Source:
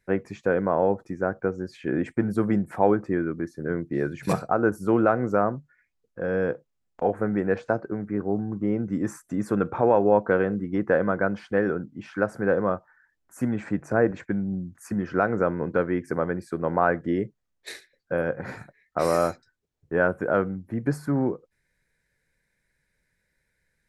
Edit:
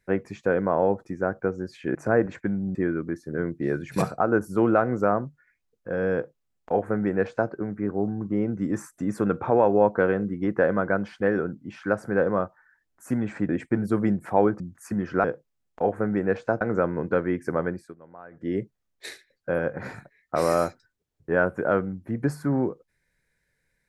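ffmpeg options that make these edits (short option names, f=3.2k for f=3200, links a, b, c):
-filter_complex "[0:a]asplit=9[a][b][c][d][e][f][g][h][i];[a]atrim=end=1.952[j];[b]atrim=start=13.798:end=14.602[k];[c]atrim=start=3.058:end=13.802[l];[d]atrim=start=1.948:end=3.062[m];[e]atrim=start=14.598:end=15.242[n];[f]atrim=start=6.448:end=7.822[o];[g]atrim=start=15.238:end=16.59,asetpts=PTS-STARTPTS,afade=t=out:st=1.072:d=0.28:silence=0.0668344[p];[h]atrim=start=16.59:end=16.94,asetpts=PTS-STARTPTS,volume=-23.5dB[q];[i]atrim=start=16.94,asetpts=PTS-STARTPTS,afade=t=in:d=0.28:silence=0.0668344[r];[j][k]acrossfade=d=0.004:c1=hsin:c2=hsin[s];[s][l]acrossfade=d=0.004:c1=hsin:c2=hsin[t];[t][m]acrossfade=d=0.004:c1=hsin:c2=hsin[u];[u][n]acrossfade=d=0.004:c1=hsin:c2=hsin[v];[v][o]acrossfade=d=0.004:c1=hsin:c2=hsin[w];[p][q][r]concat=n=3:v=0:a=1[x];[w][x]acrossfade=d=0.004:c1=hsin:c2=hsin"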